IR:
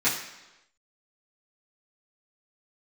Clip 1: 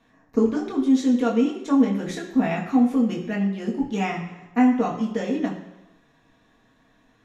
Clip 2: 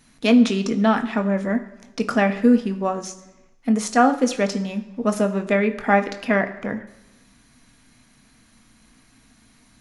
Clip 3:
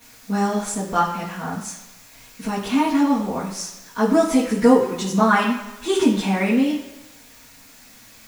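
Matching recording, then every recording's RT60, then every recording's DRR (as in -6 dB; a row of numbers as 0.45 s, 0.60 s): 3; 1.0 s, 1.0 s, 1.0 s; -2.5 dB, 6.5 dB, -12.0 dB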